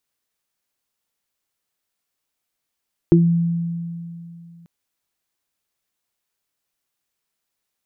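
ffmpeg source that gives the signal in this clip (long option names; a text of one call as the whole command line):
ffmpeg -f lavfi -i "aevalsrc='0.316*pow(10,-3*t/2.77)*sin(2*PI*169*t)+0.531*pow(10,-3*t/0.21)*sin(2*PI*338*t)':duration=1.54:sample_rate=44100" out.wav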